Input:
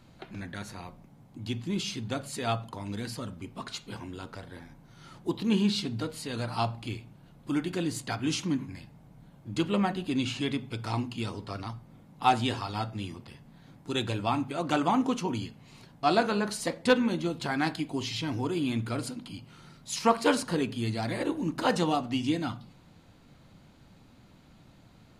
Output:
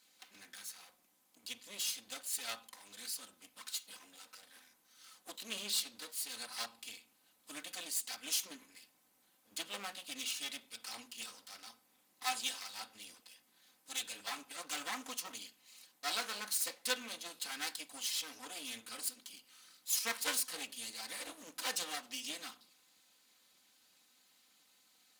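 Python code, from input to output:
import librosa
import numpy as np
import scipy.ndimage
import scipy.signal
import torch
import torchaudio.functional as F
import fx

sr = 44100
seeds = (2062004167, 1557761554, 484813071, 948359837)

y = fx.lower_of_two(x, sr, delay_ms=3.9)
y = np.diff(y, prepend=0.0)
y = y * librosa.db_to_amplitude(3.5)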